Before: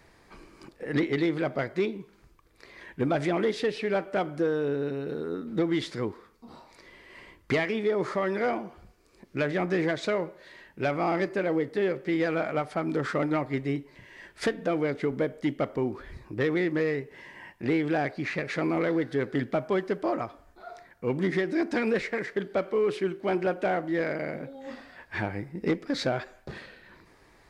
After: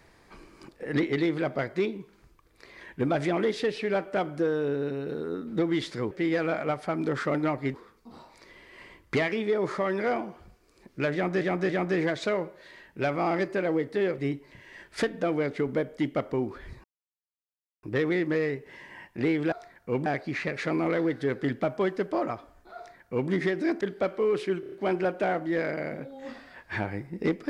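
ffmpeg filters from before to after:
-filter_complex "[0:a]asplit=14[a][b][c][d][e][f][g][h][i][j][k][l][m][n];[a]atrim=end=6.112[o];[b]atrim=start=11.988:end=13.622[p];[c]atrim=start=6.108:end=9.782[q];[d]atrim=start=9.498:end=9.782[r];[e]atrim=start=9.498:end=11.992[s];[f]atrim=start=13.618:end=16.28,asetpts=PTS-STARTPTS,afade=t=out:st=2.658:d=0.004:c=hsin,apad=pad_dur=0.99[t];[g]atrim=start=16.28:end=17.972,asetpts=PTS-STARTPTS,afade=t=in:d=0.004:c=hsin[u];[h]atrim=start=20.668:end=21.212[v];[i]atrim=start=17.968:end=21.722[w];[j]atrim=start=22.348:end=23.172[x];[k]atrim=start=23.138:end=23.172[y];[l]atrim=start=23.138:end=23.172[z];[m]atrim=start=23.138:end=23.172[aa];[n]atrim=start=23.138[ab];[o][p]acrossfade=d=0.004:c1=hsin:c2=hsin[ac];[ac][q]acrossfade=d=0.004:c1=hsin:c2=hsin[ad];[ad][r]acrossfade=d=0.004:c1=hsin:c2=hsin[ae];[ae][s]acrossfade=d=0.004:c1=hsin:c2=hsin[af];[t][u]concat=n=2:v=0:a=1[ag];[af][ag]acrossfade=d=0.004:c1=hsin:c2=hsin[ah];[ah][v]acrossfade=d=0.004:c1=hsin:c2=hsin[ai];[ai][w]acrossfade=d=0.004:c1=hsin:c2=hsin[aj];[aj][x]acrossfade=d=0.004:c1=hsin:c2=hsin[ak];[ak][y]acrossfade=d=0.004:c1=hsin:c2=hsin[al];[al][z]acrossfade=d=0.004:c1=hsin:c2=hsin[am];[am][aa]acrossfade=d=0.004:c1=hsin:c2=hsin[an];[an][ab]acrossfade=d=0.004:c1=hsin:c2=hsin"

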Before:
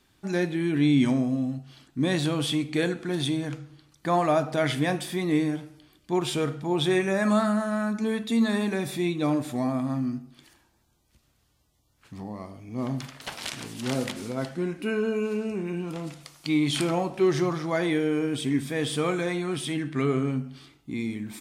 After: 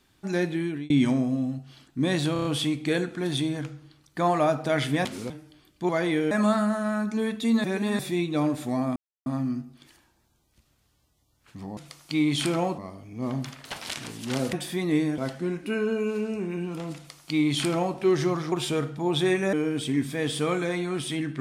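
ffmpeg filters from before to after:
-filter_complex "[0:a]asplit=19[a][b][c][d][e][f][g][h][i][j][k][l][m][n][o][p][q][r][s];[a]atrim=end=0.9,asetpts=PTS-STARTPTS,afade=t=out:st=0.57:d=0.33[t];[b]atrim=start=0.9:end=2.362,asetpts=PTS-STARTPTS,afade=t=in:d=0.004:c=hsin[u];[c]atrim=start=2.328:end=2.362[v];[d]atrim=start=2.328:end=2.362[w];[e]atrim=start=2.328:end=2.362[x];[f]atrim=start=2.328:end=4.932[y];[g]atrim=start=14.088:end=14.342[z];[h]atrim=start=5.578:end=6.172[aa];[i]atrim=start=17.678:end=18.102[ab];[j]atrim=start=7.178:end=8.512[ac];[k]atrim=start=8.508:end=8.862,asetpts=PTS-STARTPTS,areverse[ad];[l]atrim=start=8.858:end=9.83,asetpts=PTS-STARTPTS,afade=t=out:st=0.968:d=0.004:c=hsin,apad=pad_dur=0.3[ae];[m]atrim=start=9.83:end=12.342,asetpts=PTS-STARTPTS,afade=t=in:d=0.004:c=hsin[af];[n]atrim=start=16.118:end=17.132[ag];[o]atrim=start=12.338:end=14.092[ah];[p]atrim=start=4.928:end=5.582[ai];[q]atrim=start=14.338:end=17.682[aj];[r]atrim=start=6.168:end=7.182[ak];[s]atrim=start=18.098[al];[t][u]concat=n=2:v=0:a=1[am];[am][v]acrossfade=d=0.004:c1=hsin:c2=hsin[an];[an][w]acrossfade=d=0.004:c1=hsin:c2=hsin[ao];[ao][x]acrossfade=d=0.004:c1=hsin:c2=hsin[ap];[ap][y]acrossfade=d=0.004:c1=hsin:c2=hsin[aq];[aq][z]acrossfade=d=0.004:c1=hsin:c2=hsin[ar];[ar][aa]acrossfade=d=0.004:c1=hsin:c2=hsin[as];[as][ab]acrossfade=d=0.004:c1=hsin:c2=hsin[at];[at][ac]acrossfade=d=0.004:c1=hsin:c2=hsin[au];[au][ad]acrossfade=d=0.004:c1=hsin:c2=hsin[av];[ae][af]concat=n=2:v=0:a=1[aw];[av][aw]acrossfade=d=0.004:c1=hsin:c2=hsin[ax];[ax][ag]acrossfade=d=0.004:c1=hsin:c2=hsin[ay];[ay][ah]acrossfade=d=0.004:c1=hsin:c2=hsin[az];[az][ai]acrossfade=d=0.004:c1=hsin:c2=hsin[ba];[ba][aj]acrossfade=d=0.004:c1=hsin:c2=hsin[bb];[bb][ak]acrossfade=d=0.004:c1=hsin:c2=hsin[bc];[bc][al]acrossfade=d=0.004:c1=hsin:c2=hsin"

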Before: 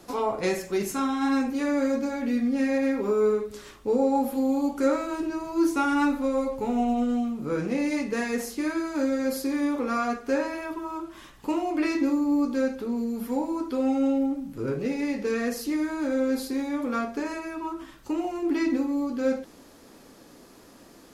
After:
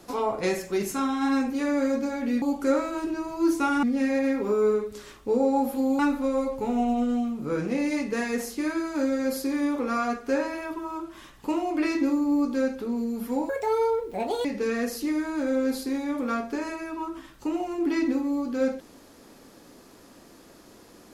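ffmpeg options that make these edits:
-filter_complex "[0:a]asplit=6[a][b][c][d][e][f];[a]atrim=end=2.422[g];[b]atrim=start=4.578:end=5.992[h];[c]atrim=start=2.418:end=4.582[i];[d]atrim=start=5.988:end=13.494[j];[e]atrim=start=13.49:end=15.09,asetpts=PTS-STARTPTS,asetrate=73647,aresample=44100,atrim=end_sample=42251,asetpts=PTS-STARTPTS[k];[f]atrim=start=15.086[l];[g][h]acrossfade=d=0.004:c1=hsin:c2=hsin[m];[m][i]acrossfade=d=0.004:c1=hsin:c2=hsin[n];[n][j]acrossfade=d=0.004:c1=hsin:c2=hsin[o];[o][k]acrossfade=d=0.004:c1=hsin:c2=hsin[p];[p][l]acrossfade=d=0.004:c1=hsin:c2=hsin"

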